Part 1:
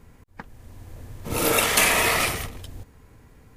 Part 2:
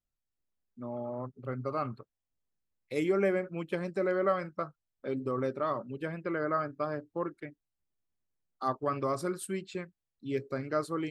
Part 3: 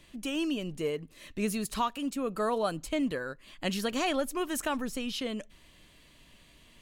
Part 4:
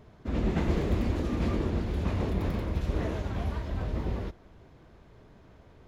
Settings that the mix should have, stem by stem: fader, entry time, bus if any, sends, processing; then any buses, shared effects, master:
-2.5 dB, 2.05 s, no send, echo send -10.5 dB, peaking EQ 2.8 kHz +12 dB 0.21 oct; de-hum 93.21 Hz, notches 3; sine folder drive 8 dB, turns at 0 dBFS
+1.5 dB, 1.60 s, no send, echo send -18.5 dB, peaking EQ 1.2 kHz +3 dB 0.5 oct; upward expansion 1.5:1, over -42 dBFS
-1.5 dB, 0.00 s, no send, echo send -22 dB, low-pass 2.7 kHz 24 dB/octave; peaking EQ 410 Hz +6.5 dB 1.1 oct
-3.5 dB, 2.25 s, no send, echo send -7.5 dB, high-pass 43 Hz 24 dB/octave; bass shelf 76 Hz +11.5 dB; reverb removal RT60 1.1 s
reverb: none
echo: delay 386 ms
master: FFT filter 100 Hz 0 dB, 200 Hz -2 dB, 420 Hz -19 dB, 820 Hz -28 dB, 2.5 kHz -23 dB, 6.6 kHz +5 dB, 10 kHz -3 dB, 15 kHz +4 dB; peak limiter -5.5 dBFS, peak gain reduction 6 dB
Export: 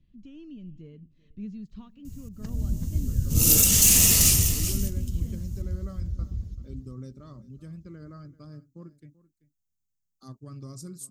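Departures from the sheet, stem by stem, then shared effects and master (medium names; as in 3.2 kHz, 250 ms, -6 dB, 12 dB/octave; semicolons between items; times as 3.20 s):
stem 2: missing upward expansion 1.5:1, over -42 dBFS; stem 3: missing peaking EQ 410 Hz +6.5 dB 1.1 oct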